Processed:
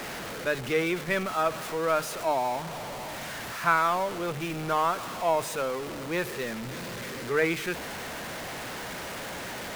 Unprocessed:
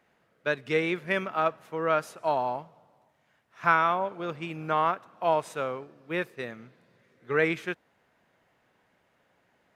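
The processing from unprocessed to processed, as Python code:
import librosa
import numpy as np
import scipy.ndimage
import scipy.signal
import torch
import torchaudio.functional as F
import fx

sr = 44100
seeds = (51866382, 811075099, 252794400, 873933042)

y = x + 0.5 * 10.0 ** (-29.0 / 20.0) * np.sign(x)
y = fx.hum_notches(y, sr, base_hz=50, count=3)
y = y * librosa.db_to_amplitude(-2.0)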